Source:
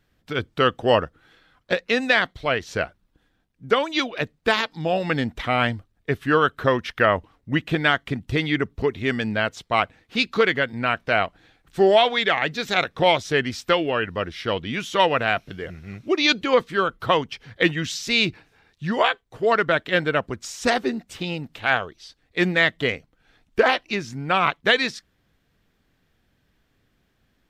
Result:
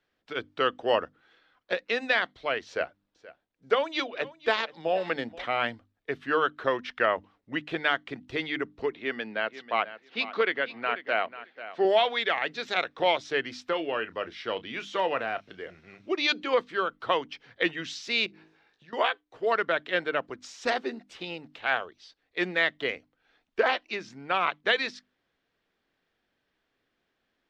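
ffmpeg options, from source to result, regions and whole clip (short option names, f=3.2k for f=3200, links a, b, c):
-filter_complex "[0:a]asettb=1/sr,asplit=3[a][b][c];[a]atrim=end=2.674[d];[b]atrim=start=2.67:end=5.44,asetpts=PTS-STARTPTS,afade=t=in:d=0.004:c=qsin,afade=t=out:st=2.766:d=0.004:c=qsin,equalizer=f=550:w=1.8:g=3.5,bandreject=f=50:t=h:w=6,bandreject=f=100:t=h:w=6,bandreject=f=150:t=h:w=6,bandreject=f=200:t=h:w=6,bandreject=f=250:t=h:w=6,bandreject=f=300:t=h:w=6,aecho=1:1:477|954:0.112|0.0168,atrim=end_sample=122157[e];[c]atrim=start=5.436[f];[d][e]acrossfade=d=0.004:c1=hsin:c2=qsin[g];[g][f]acrossfade=d=0.004:c1=qsin:c2=hsin,asettb=1/sr,asplit=3[h][i][j];[h]atrim=end=8.914[k];[i]atrim=start=8.91:end=11.85,asetpts=PTS-STARTPTS,afade=t=in:d=0.004:c=qsin,afade=t=out:st=2.936:d=0.004:c=qsin,highpass=180,lowpass=4.1k,aecho=1:1:491|982:0.2|0.0299,atrim=end_sample=129654[l];[j]atrim=start=11.846[m];[k][l]acrossfade=d=0.004:c1=hsin:c2=qsin[n];[n][m]acrossfade=d=0.004:c1=qsin:c2=hsin,asettb=1/sr,asplit=3[o][p][q];[o]atrim=end=13.674[r];[p]atrim=start=13.67:end=16.06,asetpts=PTS-STARTPTS,afade=t=in:d=0.004:c=qsin,afade=t=out:st=2.386:d=0.004:c=qsin,deesser=0.8,asplit=2[s][t];[t]adelay=31,volume=-14dB[u];[s][u]amix=inputs=2:normalize=0,atrim=end_sample=105399[v];[q]atrim=start=16.056[w];[r][v]acrossfade=d=0.004:c1=hsin:c2=qsin[x];[x][w]acrossfade=d=0.004:c1=qsin:c2=hsin,asettb=1/sr,asplit=3[y][z][aa];[y]atrim=end=18.264[ab];[z]atrim=start=18.26:end=18.93,asetpts=PTS-STARTPTS,afade=t=in:d=0.004:c=qsin,afade=t=out:st=0.666:d=0.004:c=qsin,asplit=2[ac][ad];[ad]adelay=19,volume=-6dB[ae];[ac][ae]amix=inputs=2:normalize=0,atrim=end_sample=29547,bandreject=f=53.08:t=h:w=4,bandreject=f=106.16:t=h:w=4,bandreject=f=159.24:t=h:w=4,bandreject=f=212.32:t=h:w=4,bandreject=f=265.4:t=h:w=4,bandreject=f=318.48:t=h:w=4,bandreject=f=371.56:t=h:w=4,bandreject=f=424.64:t=h:w=4,bandreject=f=477.72:t=h:w=4,bandreject=f=530.8:t=h:w=4,bandreject=f=583.88:t=h:w=4,bandreject=f=636.96:t=h:w=4,bandreject=f=690.04:t=h:w=4,bandreject=f=743.12:t=h:w=4,bandreject=f=796.2:t=h:w=4,bandreject=f=849.28:t=h:w=4,bandreject=f=902.36:t=h:w=4,bandreject=f=955.44:t=h:w=4,bandreject=f=1.00852k:t=h:w=4,bandreject=f=1.0616k:t=h:w=4,bandreject=f=1.11468k:t=h:w=4,bandreject=f=1.16776k:t=h:w=4,bandreject=f=1.22084k:t=h:w=4,bandreject=f=1.27392k:t=h:w=4,bandreject=f=1.327k:t=h:w=4,bandreject=f=1.38008k:t=h:w=4,bandreject=f=1.43316k:t=h:w=4,bandreject=f=1.48624k:t=h:w=4,bandreject=f=1.53932k:t=h:w=4,bandreject=f=1.5924k:t=h:w=4,bandreject=f=1.64548k:t=h:w=4,bandreject=f=1.69856k:t=h:w=4,bandreject=f=1.75164k:t=h:w=4,bandreject=f=1.80472k:t=h:w=4,bandreject=f=1.8578k:t=h:w=4,bandreject=f=1.91088k:t=h:w=4,bandreject=f=1.96396k:t=h:w=4,bandreject=f=2.01704k:t=h:w=4,acompressor=threshold=-38dB:ratio=10:attack=3.2:release=140:knee=1:detection=peak[af];[aa]atrim=start=18.926[ag];[ab][af]acrossfade=d=0.004:c1=hsin:c2=qsin[ah];[ah][ag]acrossfade=d=0.004:c1=qsin:c2=hsin,acrossover=split=260 6100:gain=0.178 1 0.1[ai][aj][ak];[ai][aj][ak]amix=inputs=3:normalize=0,bandreject=f=50:t=h:w=6,bandreject=f=100:t=h:w=6,bandreject=f=150:t=h:w=6,bandreject=f=200:t=h:w=6,bandreject=f=250:t=h:w=6,bandreject=f=300:t=h:w=6,volume=-6dB"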